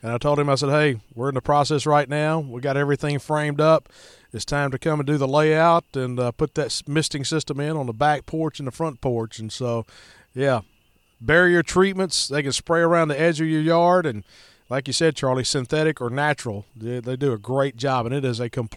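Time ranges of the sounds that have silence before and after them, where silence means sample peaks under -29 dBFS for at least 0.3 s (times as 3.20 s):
4.34–9.81 s
10.36–10.60 s
11.26–14.19 s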